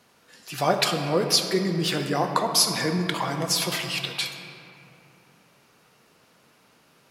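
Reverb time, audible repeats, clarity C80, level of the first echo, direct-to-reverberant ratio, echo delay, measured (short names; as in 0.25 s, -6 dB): 3.0 s, none, 6.5 dB, none, 4.0 dB, none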